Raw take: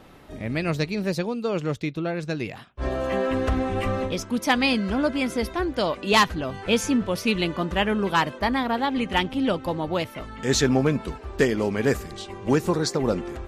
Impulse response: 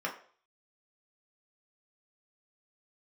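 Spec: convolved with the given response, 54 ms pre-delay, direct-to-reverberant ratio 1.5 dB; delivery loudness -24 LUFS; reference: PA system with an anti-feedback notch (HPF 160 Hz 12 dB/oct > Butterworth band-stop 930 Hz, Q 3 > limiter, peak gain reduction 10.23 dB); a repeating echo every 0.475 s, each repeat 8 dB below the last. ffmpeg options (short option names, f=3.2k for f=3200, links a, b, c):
-filter_complex "[0:a]aecho=1:1:475|950|1425|1900|2375:0.398|0.159|0.0637|0.0255|0.0102,asplit=2[a][b];[1:a]atrim=start_sample=2205,adelay=54[c];[b][c]afir=irnorm=-1:irlink=0,volume=-7.5dB[d];[a][d]amix=inputs=2:normalize=0,highpass=160,asuperstop=centerf=930:order=8:qfactor=3,volume=0.5dB,alimiter=limit=-13.5dB:level=0:latency=1"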